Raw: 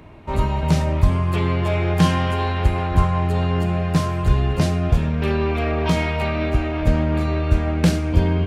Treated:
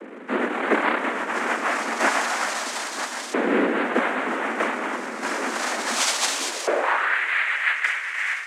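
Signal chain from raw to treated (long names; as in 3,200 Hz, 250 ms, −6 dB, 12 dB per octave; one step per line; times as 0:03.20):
linear delta modulator 64 kbit/s, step −32.5 dBFS
automatic gain control gain up to 4 dB
auto-filter band-pass saw up 0.3 Hz 370–2,800 Hz
cochlear-implant simulation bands 3
frequency shifter +130 Hz
high-pass filter sweep 190 Hz → 2,000 Hz, 0:06.28–0:07.21
dense smooth reverb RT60 3.1 s, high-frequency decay 0.75×, DRR 16 dB
level +5.5 dB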